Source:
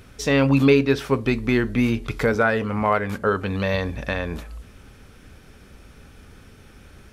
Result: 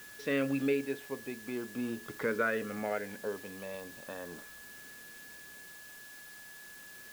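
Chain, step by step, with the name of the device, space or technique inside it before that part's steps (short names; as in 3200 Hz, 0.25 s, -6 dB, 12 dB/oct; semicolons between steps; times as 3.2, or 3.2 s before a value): shortwave radio (BPF 250–2800 Hz; tremolo 0.4 Hz, depth 63%; LFO notch saw up 0.45 Hz 710–2600 Hz; whine 1700 Hz -42 dBFS; white noise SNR 16 dB); gain -8.5 dB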